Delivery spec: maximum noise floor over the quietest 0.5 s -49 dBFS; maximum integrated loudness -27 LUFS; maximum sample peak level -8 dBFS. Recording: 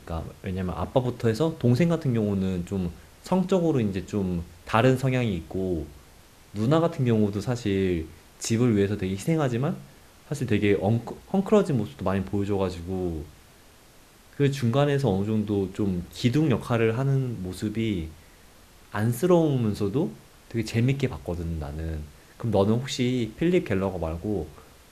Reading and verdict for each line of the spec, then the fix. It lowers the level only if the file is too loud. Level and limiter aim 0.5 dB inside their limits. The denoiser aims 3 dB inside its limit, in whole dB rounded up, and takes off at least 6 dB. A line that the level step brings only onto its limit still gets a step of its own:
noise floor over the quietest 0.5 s -53 dBFS: pass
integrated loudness -26.0 LUFS: fail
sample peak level -4.5 dBFS: fail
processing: trim -1.5 dB; peak limiter -8.5 dBFS

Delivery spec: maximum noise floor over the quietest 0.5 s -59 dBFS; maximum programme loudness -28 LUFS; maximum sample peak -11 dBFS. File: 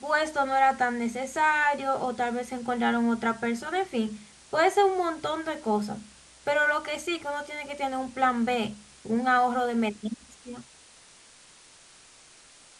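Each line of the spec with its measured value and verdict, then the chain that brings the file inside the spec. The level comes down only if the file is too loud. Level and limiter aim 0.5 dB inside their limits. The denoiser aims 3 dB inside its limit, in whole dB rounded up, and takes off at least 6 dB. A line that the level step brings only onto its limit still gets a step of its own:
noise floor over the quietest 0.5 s -54 dBFS: fail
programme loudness -27.0 LUFS: fail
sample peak -10.5 dBFS: fail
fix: noise reduction 7 dB, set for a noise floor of -54 dBFS; trim -1.5 dB

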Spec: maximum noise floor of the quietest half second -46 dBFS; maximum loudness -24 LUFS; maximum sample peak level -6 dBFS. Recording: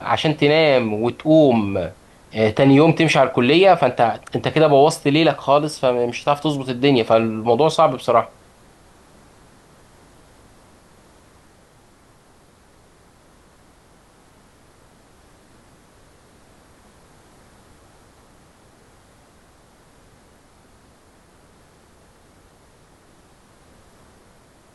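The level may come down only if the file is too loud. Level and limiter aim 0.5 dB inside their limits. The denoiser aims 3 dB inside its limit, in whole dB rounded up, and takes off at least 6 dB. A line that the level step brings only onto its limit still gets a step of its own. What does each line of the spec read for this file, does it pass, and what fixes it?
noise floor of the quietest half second -52 dBFS: pass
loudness -16.5 LUFS: fail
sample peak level -3.5 dBFS: fail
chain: trim -8 dB

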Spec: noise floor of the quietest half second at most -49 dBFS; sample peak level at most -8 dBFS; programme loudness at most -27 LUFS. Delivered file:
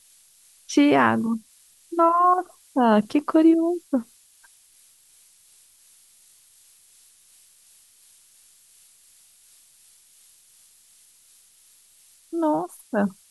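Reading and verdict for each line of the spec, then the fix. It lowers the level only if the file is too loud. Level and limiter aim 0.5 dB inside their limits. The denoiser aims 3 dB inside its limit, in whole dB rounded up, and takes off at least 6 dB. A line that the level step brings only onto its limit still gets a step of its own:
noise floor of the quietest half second -56 dBFS: pass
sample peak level -5.5 dBFS: fail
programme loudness -21.5 LUFS: fail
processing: trim -6 dB

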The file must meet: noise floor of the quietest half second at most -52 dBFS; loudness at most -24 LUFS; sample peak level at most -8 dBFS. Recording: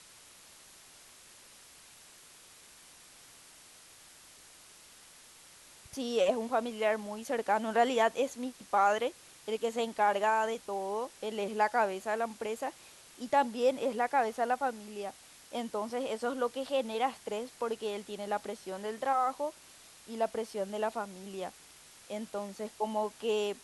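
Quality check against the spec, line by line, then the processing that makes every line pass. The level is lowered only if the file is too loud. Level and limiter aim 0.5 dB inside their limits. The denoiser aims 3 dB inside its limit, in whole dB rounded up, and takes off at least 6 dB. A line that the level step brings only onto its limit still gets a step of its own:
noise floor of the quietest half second -56 dBFS: pass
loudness -33.0 LUFS: pass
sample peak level -15.0 dBFS: pass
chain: none needed

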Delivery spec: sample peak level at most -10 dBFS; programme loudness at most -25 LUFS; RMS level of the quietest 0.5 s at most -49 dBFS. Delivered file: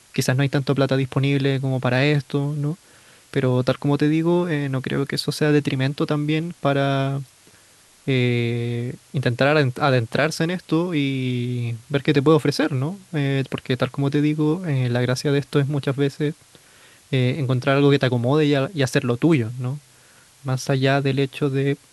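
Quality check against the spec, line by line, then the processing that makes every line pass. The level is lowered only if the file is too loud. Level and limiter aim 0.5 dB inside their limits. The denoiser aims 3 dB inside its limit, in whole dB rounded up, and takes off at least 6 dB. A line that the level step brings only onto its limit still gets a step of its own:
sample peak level -4.0 dBFS: fail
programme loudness -21.5 LUFS: fail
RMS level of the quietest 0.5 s -53 dBFS: pass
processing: trim -4 dB; peak limiter -10.5 dBFS

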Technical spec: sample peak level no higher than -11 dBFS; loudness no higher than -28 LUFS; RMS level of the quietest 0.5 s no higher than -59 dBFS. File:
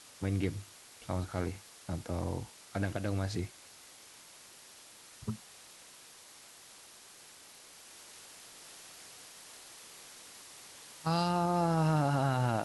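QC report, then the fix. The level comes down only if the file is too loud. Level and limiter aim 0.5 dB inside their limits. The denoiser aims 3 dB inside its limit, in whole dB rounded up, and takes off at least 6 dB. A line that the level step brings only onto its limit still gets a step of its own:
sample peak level -18.0 dBFS: pass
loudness -34.0 LUFS: pass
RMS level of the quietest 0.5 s -55 dBFS: fail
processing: noise reduction 7 dB, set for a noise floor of -55 dBFS

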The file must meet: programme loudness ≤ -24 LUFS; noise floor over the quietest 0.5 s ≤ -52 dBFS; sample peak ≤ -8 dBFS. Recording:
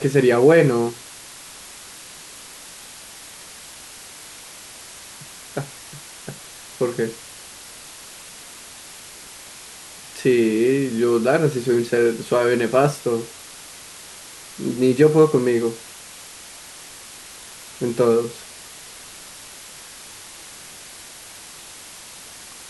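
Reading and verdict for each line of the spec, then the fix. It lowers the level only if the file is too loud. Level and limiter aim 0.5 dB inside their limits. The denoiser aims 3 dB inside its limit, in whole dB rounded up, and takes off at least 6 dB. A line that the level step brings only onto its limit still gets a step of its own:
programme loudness -19.0 LUFS: fail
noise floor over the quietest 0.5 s -40 dBFS: fail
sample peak -4.0 dBFS: fail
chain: noise reduction 10 dB, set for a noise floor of -40 dBFS; trim -5.5 dB

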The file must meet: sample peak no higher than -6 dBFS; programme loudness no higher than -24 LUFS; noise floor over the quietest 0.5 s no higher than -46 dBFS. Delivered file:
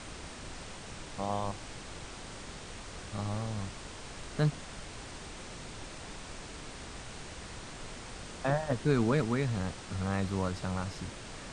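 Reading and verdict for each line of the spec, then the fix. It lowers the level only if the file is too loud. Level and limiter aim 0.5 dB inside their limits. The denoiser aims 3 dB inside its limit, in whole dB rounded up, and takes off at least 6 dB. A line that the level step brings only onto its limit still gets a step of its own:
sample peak -16.0 dBFS: pass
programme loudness -36.5 LUFS: pass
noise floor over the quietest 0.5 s -44 dBFS: fail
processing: noise reduction 6 dB, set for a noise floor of -44 dBFS

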